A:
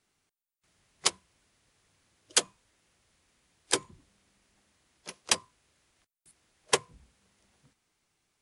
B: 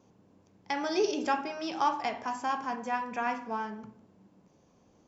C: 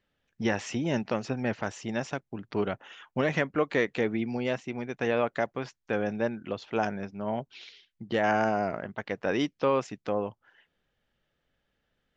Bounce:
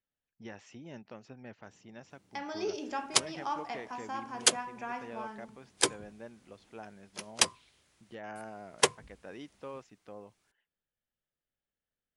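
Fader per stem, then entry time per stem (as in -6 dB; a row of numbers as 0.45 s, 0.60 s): +0.5 dB, -7.5 dB, -18.5 dB; 2.10 s, 1.65 s, 0.00 s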